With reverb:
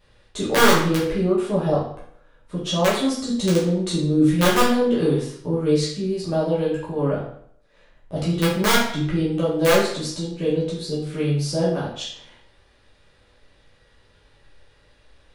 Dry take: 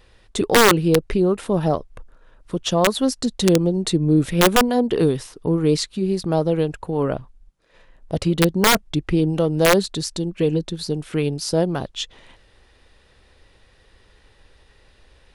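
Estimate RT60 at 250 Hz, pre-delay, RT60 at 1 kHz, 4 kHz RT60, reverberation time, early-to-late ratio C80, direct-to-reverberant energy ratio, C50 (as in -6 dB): 0.65 s, 8 ms, 0.60 s, 0.55 s, 0.60 s, 7.0 dB, -8.5 dB, 3.0 dB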